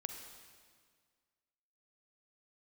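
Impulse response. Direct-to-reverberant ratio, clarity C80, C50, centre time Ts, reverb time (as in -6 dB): 5.0 dB, 6.5 dB, 5.5 dB, 41 ms, 1.8 s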